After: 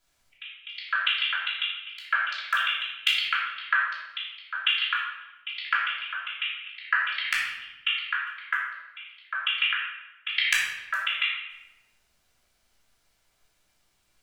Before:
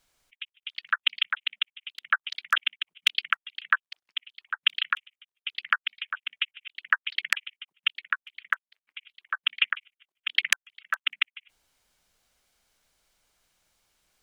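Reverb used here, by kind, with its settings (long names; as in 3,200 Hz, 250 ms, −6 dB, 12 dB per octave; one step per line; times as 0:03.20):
rectangular room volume 480 cubic metres, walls mixed, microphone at 3 metres
level −6 dB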